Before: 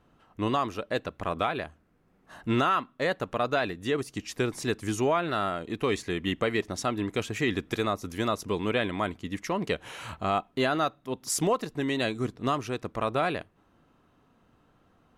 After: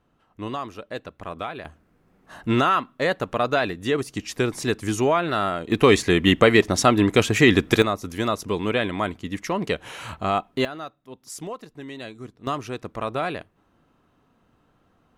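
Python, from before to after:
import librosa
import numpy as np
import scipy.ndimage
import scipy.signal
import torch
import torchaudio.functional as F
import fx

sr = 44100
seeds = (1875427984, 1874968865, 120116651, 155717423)

y = fx.gain(x, sr, db=fx.steps((0.0, -3.5), (1.65, 5.0), (5.72, 12.0), (7.82, 4.0), (10.65, -8.5), (12.47, 0.5)))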